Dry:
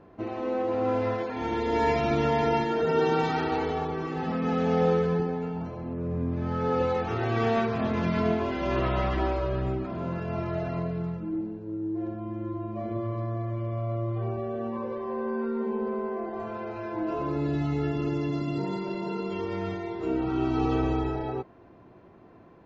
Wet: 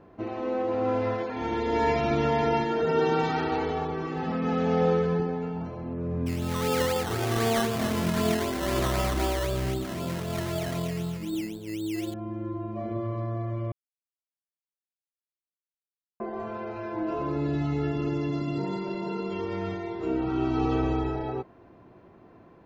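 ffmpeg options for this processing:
-filter_complex "[0:a]asettb=1/sr,asplit=3[s0][s1][s2];[s0]atrim=end=6.264[s3];[s1]atrim=start=6.26:end=12.14,asetpts=PTS-STARTPTS,afade=t=in:d=0.004:c=qsin,afade=t=out:st=5.876:d=0.004:c=qsin,acrusher=samples=15:mix=1:aa=0.000001:lfo=1:lforange=9:lforate=3.9[s4];[s2]atrim=start=12.136[s5];[s3][s4]acrossfade=d=0.004:c1=hsin:c2=qsin[s6];[s6][s5]acrossfade=d=0.004:c1=qsin:c2=hsin,asplit=3[s7][s8][s9];[s7]atrim=end=13.72,asetpts=PTS-STARTPTS,afade=t=out:st=13.716:d=0.004:c=hsin[s10];[s8]atrim=start=13.72:end=16.2,asetpts=PTS-STARTPTS,volume=0[s11];[s9]atrim=start=16.2,asetpts=PTS-STARTPTS,afade=t=in:d=0.004:c=hsin[s12];[s10][s11][s12]concat=n=3:v=0:a=1"

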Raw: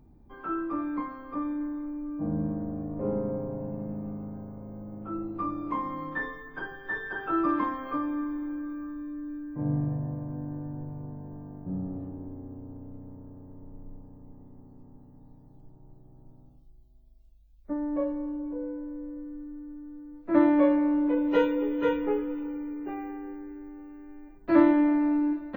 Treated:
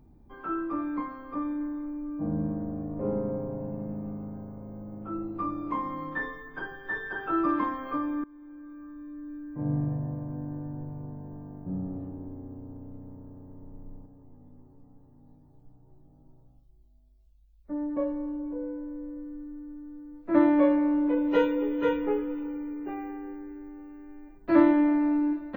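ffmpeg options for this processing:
-filter_complex "[0:a]asettb=1/sr,asplit=3[s0][s1][s2];[s0]atrim=end=14.064[s3];[s1]atrim=start=14.06:end=17.97,asetpts=PTS-STARTPTS,afade=t=in:d=0.004:c=qsin,afade=t=out:st=3.906:d=0.004:c=qsin,flanger=delay=17.5:depth=2.6:speed=1.2[s4];[s2]atrim=start=17.966[s5];[s3][s4]acrossfade=d=0.004:c1=hsin:c2=qsin[s6];[s6][s5]acrossfade=d=0.004:c1=qsin:c2=hsin,asplit=2[s7][s8];[s7]atrim=end=8.24,asetpts=PTS-STARTPTS,afade=t=out:st=8.236:d=0.004:c=hsin:silence=0.0891251[s9];[s8]atrim=start=8.24,asetpts=PTS-STARTPTS,afade=t=in:d=1.57:silence=0.0891251[s10];[s9][s10]concat=n=2:v=0:a=1"

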